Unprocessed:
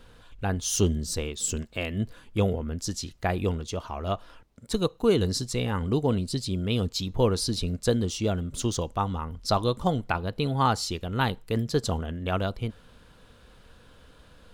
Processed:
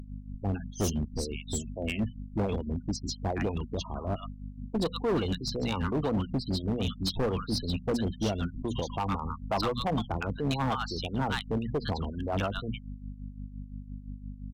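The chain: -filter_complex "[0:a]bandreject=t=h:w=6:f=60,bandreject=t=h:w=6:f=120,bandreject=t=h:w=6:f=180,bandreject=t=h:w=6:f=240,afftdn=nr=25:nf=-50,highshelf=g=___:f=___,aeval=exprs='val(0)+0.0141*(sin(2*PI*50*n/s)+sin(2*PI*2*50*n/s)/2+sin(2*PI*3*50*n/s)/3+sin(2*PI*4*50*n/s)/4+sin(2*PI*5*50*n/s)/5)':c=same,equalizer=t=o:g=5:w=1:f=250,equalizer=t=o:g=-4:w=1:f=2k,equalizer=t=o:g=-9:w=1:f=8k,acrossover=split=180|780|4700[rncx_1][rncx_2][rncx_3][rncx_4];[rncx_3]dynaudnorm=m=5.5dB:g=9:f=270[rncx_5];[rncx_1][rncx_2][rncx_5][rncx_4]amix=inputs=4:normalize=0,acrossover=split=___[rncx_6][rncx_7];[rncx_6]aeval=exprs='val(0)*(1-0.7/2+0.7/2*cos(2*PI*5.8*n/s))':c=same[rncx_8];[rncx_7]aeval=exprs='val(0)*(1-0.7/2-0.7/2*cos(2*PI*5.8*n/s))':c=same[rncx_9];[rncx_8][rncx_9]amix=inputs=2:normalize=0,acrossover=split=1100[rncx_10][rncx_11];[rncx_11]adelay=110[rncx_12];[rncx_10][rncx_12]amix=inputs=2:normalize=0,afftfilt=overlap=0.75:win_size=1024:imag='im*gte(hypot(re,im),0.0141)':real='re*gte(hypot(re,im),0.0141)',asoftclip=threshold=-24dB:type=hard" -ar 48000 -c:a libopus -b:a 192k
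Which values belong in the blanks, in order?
8.5, 12k, 500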